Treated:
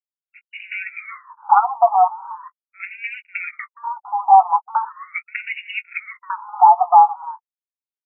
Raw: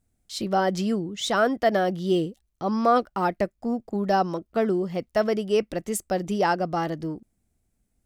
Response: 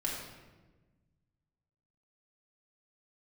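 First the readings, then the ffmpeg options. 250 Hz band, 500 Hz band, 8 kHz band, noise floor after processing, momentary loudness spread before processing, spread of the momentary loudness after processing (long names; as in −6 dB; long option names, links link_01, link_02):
below −40 dB, −5.5 dB, below −40 dB, below −85 dBFS, 9 LU, 21 LU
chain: -filter_complex "[0:a]anlmdn=25.1,highpass=110,acompressor=threshold=-25dB:ratio=12,acrossover=split=250|5300[link_01][link_02][link_03];[link_01]adelay=120[link_04];[link_02]adelay=190[link_05];[link_04][link_05][link_03]amix=inputs=3:normalize=0,aexciter=amount=7.3:drive=5:freq=11000,aeval=exprs='0.282*sin(PI/2*3.16*val(0)/0.282)':channel_layout=same,flanger=delay=4.8:depth=2.5:regen=46:speed=1.3:shape=sinusoidal,aeval=exprs='sgn(val(0))*max(abs(val(0))-0.0126,0)':channel_layout=same,asplit=3[link_06][link_07][link_08];[link_06]bandpass=frequency=300:width_type=q:width=8,volume=0dB[link_09];[link_07]bandpass=frequency=870:width_type=q:width=8,volume=-6dB[link_10];[link_08]bandpass=frequency=2240:width_type=q:width=8,volume=-9dB[link_11];[link_09][link_10][link_11]amix=inputs=3:normalize=0,asplit=2[link_12][link_13];[link_13]adelay=17,volume=-11.5dB[link_14];[link_12][link_14]amix=inputs=2:normalize=0,alimiter=level_in=31.5dB:limit=-1dB:release=50:level=0:latency=1,afftfilt=real='re*between(b*sr/1024,930*pow(2100/930,0.5+0.5*sin(2*PI*0.4*pts/sr))/1.41,930*pow(2100/930,0.5+0.5*sin(2*PI*0.4*pts/sr))*1.41)':imag='im*between(b*sr/1024,930*pow(2100/930,0.5+0.5*sin(2*PI*0.4*pts/sr))/1.41,930*pow(2100/930,0.5+0.5*sin(2*PI*0.4*pts/sr))*1.41)':win_size=1024:overlap=0.75"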